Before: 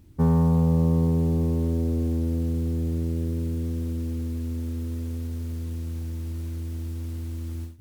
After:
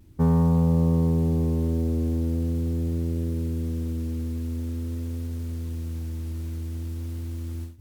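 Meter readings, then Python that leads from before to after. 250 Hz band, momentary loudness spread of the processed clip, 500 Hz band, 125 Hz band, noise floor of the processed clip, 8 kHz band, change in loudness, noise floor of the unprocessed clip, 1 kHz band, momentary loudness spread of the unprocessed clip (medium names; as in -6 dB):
0.0 dB, 12 LU, 0.0 dB, 0.0 dB, -32 dBFS, no reading, 0.0 dB, -32 dBFS, 0.0 dB, 12 LU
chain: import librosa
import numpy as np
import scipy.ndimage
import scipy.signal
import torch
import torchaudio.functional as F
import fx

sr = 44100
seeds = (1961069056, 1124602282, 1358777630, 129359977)

y = fx.vibrato(x, sr, rate_hz=0.44, depth_cents=19.0)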